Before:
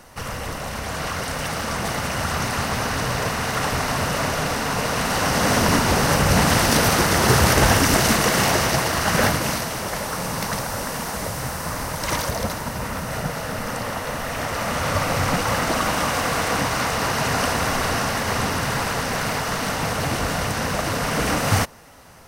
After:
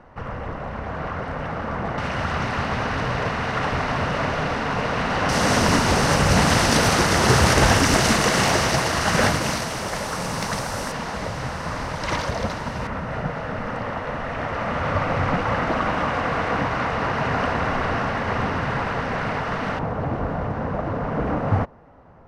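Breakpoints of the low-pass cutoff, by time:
1.5 kHz
from 1.98 s 3 kHz
from 5.29 s 8.1 kHz
from 10.92 s 4.2 kHz
from 12.87 s 2.2 kHz
from 19.79 s 1 kHz

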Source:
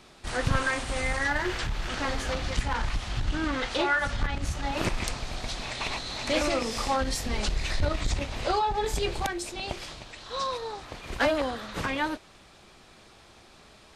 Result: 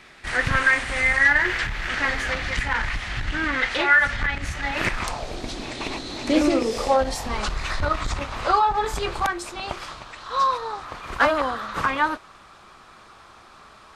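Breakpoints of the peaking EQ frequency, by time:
peaking EQ +13.5 dB 1 oct
4.90 s 1.9 kHz
5.42 s 310 Hz
6.54 s 310 Hz
7.40 s 1.2 kHz

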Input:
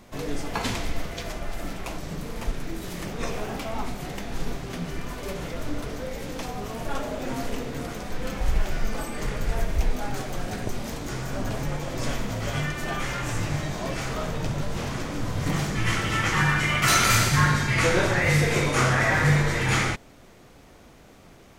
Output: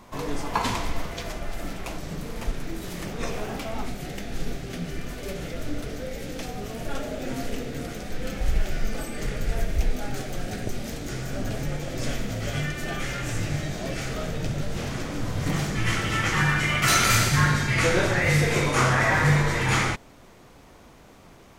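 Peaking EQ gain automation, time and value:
peaking EQ 1 kHz 0.45 oct
0.89 s +9.5 dB
1.41 s -2 dB
3.58 s -2 dB
4.01 s -11.5 dB
14.53 s -11.5 dB
15.10 s -3 dB
18.34 s -3 dB
18.79 s +4 dB

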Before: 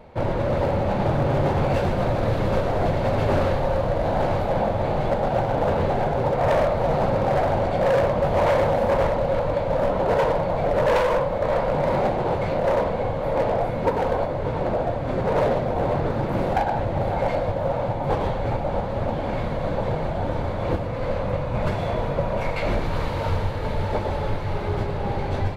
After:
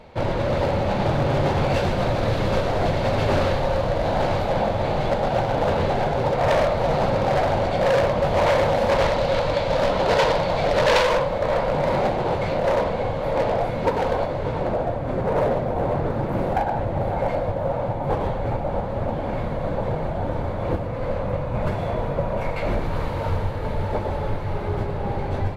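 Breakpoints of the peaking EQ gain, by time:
peaking EQ 4.5 kHz 2.2 oct
8.62 s +7 dB
9.21 s +14.5 dB
10.86 s +14.5 dB
11.48 s +5 dB
14.34 s +5 dB
15.03 s -4.5 dB

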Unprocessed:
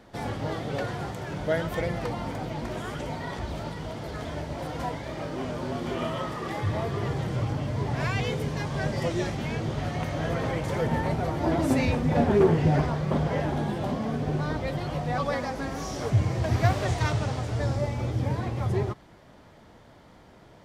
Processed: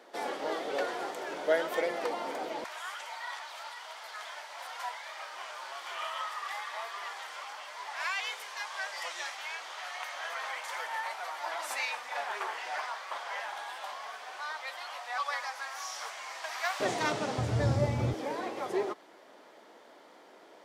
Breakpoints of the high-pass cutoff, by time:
high-pass 24 dB/octave
350 Hz
from 2.64 s 910 Hz
from 16.80 s 220 Hz
from 17.38 s 83 Hz
from 18.14 s 320 Hz

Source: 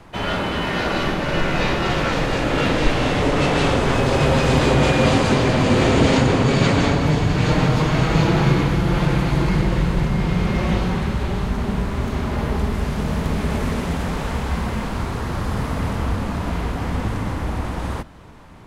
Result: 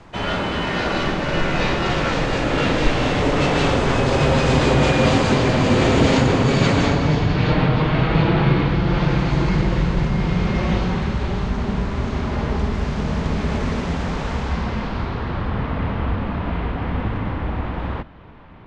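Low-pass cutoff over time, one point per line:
low-pass 24 dB/octave
6.81 s 8.1 kHz
7.66 s 3.9 kHz
8.48 s 3.9 kHz
9.35 s 6.7 kHz
14.40 s 6.7 kHz
15.53 s 3.4 kHz

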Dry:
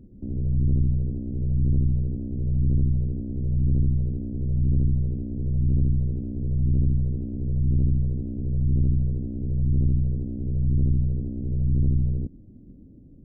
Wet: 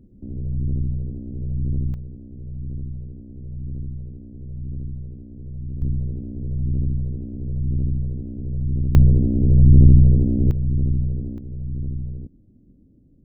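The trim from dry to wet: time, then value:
-2 dB
from 1.94 s -9 dB
from 5.82 s -1 dB
from 8.95 s +11.5 dB
from 10.51 s +1 dB
from 11.38 s -6 dB

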